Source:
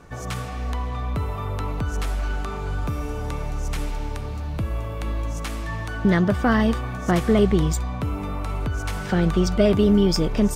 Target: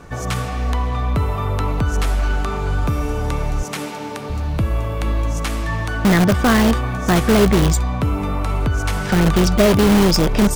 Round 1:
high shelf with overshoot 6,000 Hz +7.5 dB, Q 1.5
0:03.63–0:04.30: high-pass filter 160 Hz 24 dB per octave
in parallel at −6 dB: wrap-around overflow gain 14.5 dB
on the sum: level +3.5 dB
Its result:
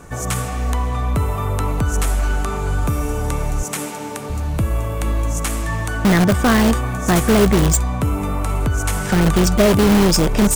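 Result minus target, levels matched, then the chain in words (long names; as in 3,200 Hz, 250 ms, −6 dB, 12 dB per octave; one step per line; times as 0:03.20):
8,000 Hz band +5.0 dB
0:03.63–0:04.30: high-pass filter 160 Hz 24 dB per octave
in parallel at −6 dB: wrap-around overflow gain 14.5 dB
on the sum: level +3.5 dB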